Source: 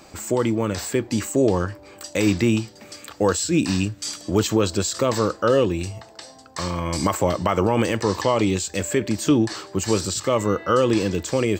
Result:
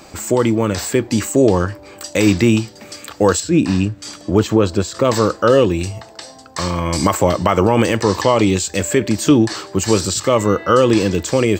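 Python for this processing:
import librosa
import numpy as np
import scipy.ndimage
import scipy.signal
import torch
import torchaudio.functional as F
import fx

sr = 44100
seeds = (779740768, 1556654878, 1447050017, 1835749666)

y = fx.high_shelf(x, sr, hz=3000.0, db=-11.5, at=(3.4, 5.05))
y = y * 10.0 ** (6.0 / 20.0)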